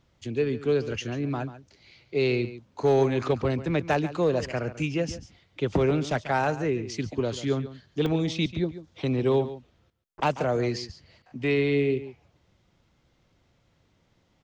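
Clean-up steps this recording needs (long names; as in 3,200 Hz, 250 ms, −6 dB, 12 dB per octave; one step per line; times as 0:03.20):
repair the gap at 0:08.06, 2.2 ms
echo removal 140 ms −14 dB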